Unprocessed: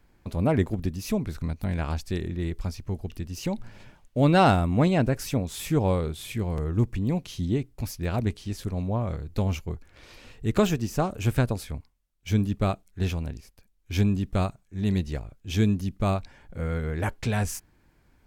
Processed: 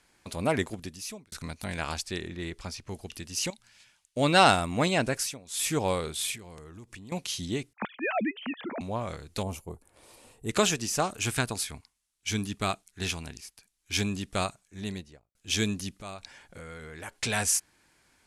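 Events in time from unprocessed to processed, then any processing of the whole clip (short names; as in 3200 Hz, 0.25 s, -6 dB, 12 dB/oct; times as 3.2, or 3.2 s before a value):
0.57–1.32 fade out linear
2.05–2.89 LPF 3900 Hz 6 dB/oct
3.5–4.17 passive tone stack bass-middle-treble 5-5-5
5.14–5.69 dip -17 dB, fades 0.24 s
6.27–7.12 compressor 8:1, threshold -35 dBFS
7.73–8.81 sine-wave speech
9.43–10.49 band shelf 3000 Hz -15 dB 2.6 oct
11.08–14.01 bell 540 Hz -10 dB 0.26 oct
14.61–15.35 studio fade out
15.96–17.17 compressor 8:1, threshold -33 dBFS
whole clip: steep low-pass 11000 Hz 36 dB/oct; tilt +3.5 dB/oct; gain +1 dB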